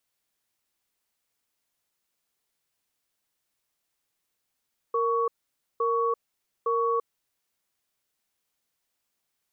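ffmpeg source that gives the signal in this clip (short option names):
-f lavfi -i "aevalsrc='0.0562*(sin(2*PI*464*t)+sin(2*PI*1120*t))*clip(min(mod(t,0.86),0.34-mod(t,0.86))/0.005,0,1)':d=2.09:s=44100"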